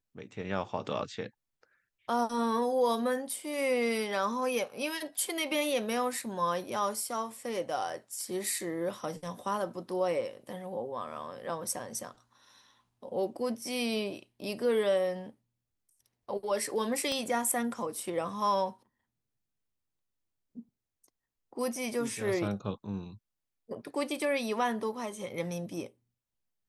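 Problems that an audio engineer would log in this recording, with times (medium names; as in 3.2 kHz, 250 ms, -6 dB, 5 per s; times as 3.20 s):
17.12 s: pop -21 dBFS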